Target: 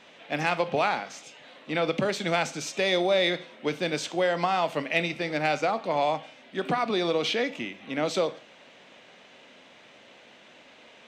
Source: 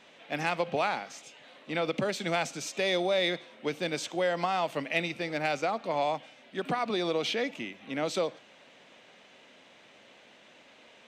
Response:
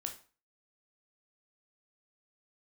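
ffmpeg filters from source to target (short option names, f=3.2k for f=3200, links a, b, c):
-filter_complex "[0:a]asplit=2[a][b];[1:a]atrim=start_sample=2205,lowpass=8.7k[c];[b][c]afir=irnorm=-1:irlink=0,volume=-3dB[d];[a][d]amix=inputs=2:normalize=0"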